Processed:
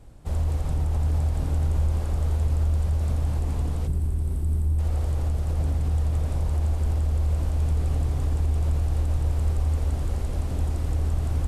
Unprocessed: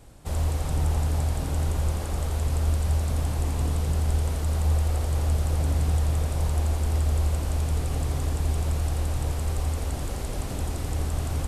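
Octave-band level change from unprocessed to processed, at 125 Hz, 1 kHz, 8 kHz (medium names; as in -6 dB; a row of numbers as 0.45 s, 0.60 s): +1.0 dB, -4.0 dB, -9.0 dB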